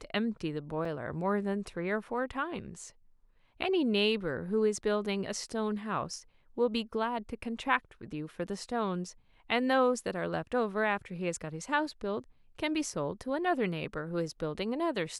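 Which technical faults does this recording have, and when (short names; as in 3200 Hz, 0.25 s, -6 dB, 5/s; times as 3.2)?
0.85 gap 3.5 ms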